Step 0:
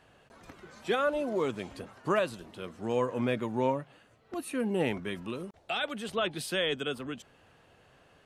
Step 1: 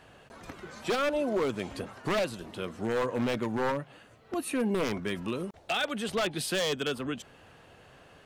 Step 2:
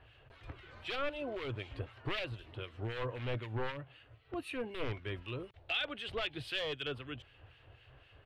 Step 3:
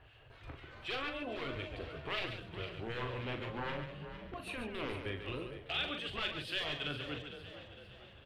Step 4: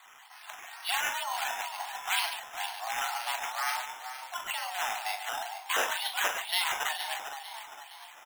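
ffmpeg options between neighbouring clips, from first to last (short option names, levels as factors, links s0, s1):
-filter_complex "[0:a]asplit=2[s0][s1];[s1]acompressor=threshold=0.0141:ratio=6,volume=1[s2];[s0][s2]amix=inputs=2:normalize=0,aeval=exprs='0.0794*(abs(mod(val(0)/0.0794+3,4)-2)-1)':c=same"
-filter_complex "[0:a]firequalizer=gain_entry='entry(120,0);entry(180,-25);entry(300,-12);entry(840,-13);entry(2000,-8);entry(2900,-4);entry(6300,-25)':delay=0.05:min_phase=1,acrossover=split=1600[s0][s1];[s0]aeval=exprs='val(0)*(1-0.7/2+0.7/2*cos(2*PI*3.9*n/s))':c=same[s2];[s1]aeval=exprs='val(0)*(1-0.7/2-0.7/2*cos(2*PI*3.9*n/s))':c=same[s3];[s2][s3]amix=inputs=2:normalize=0,volume=1.88"
-filter_complex "[0:a]asplit=2[s0][s1];[s1]asplit=5[s2][s3][s4][s5][s6];[s2]adelay=456,afreqshift=36,volume=0.251[s7];[s3]adelay=912,afreqshift=72,volume=0.12[s8];[s4]adelay=1368,afreqshift=108,volume=0.0575[s9];[s5]adelay=1824,afreqshift=144,volume=0.0279[s10];[s6]adelay=2280,afreqshift=180,volume=0.0133[s11];[s7][s8][s9][s10][s11]amix=inputs=5:normalize=0[s12];[s0][s12]amix=inputs=2:normalize=0,afftfilt=real='re*lt(hypot(re,im),0.1)':imag='im*lt(hypot(re,im),0.1)':win_size=1024:overlap=0.75,asplit=2[s13][s14];[s14]aecho=0:1:40.82|139.9:0.447|0.398[s15];[s13][s15]amix=inputs=2:normalize=0"
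-filter_complex "[0:a]highpass=f=400:t=q:w=0.5412,highpass=f=400:t=q:w=1.307,lowpass=f=3400:t=q:w=0.5176,lowpass=f=3400:t=q:w=0.7071,lowpass=f=3400:t=q:w=1.932,afreqshift=340,asplit=2[s0][s1];[s1]adelay=37,volume=0.224[s2];[s0][s2]amix=inputs=2:normalize=0,acrusher=samples=8:mix=1:aa=0.000001:lfo=1:lforange=4.8:lforate=2.1,volume=2.82"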